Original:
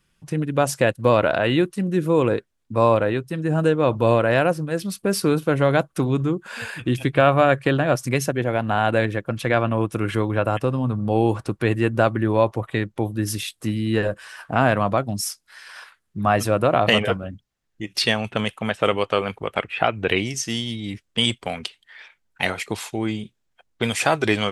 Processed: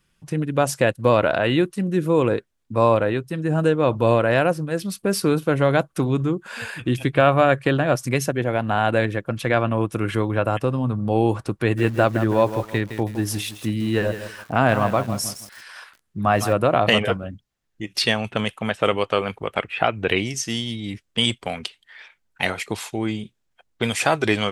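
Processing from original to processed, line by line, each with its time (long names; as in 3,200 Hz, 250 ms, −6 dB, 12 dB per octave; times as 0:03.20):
0:11.56–0:16.53: feedback echo at a low word length 162 ms, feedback 35%, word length 6 bits, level −10 dB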